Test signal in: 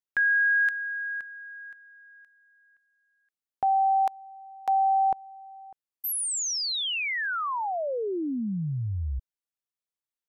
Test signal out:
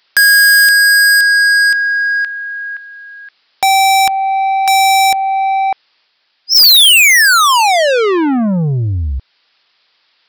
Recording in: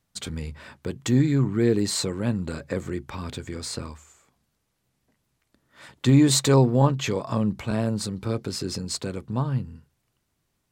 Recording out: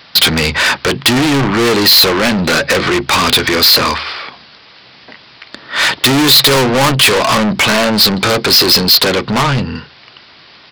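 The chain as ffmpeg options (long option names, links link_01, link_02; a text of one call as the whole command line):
ffmpeg -i in.wav -filter_complex "[0:a]asplit=2[link_01][link_02];[link_02]acompressor=threshold=-35dB:ratio=6:attack=27:release=319:knee=6:detection=rms,volume=2dB[link_03];[link_01][link_03]amix=inputs=2:normalize=0,aresample=11025,aresample=44100,asplit=2[link_04][link_05];[link_05]highpass=frequency=720:poles=1,volume=36dB,asoftclip=type=tanh:threshold=-6dB[link_06];[link_04][link_06]amix=inputs=2:normalize=0,lowpass=frequency=2600:poles=1,volume=-6dB,crystalizer=i=5.5:c=0" out.wav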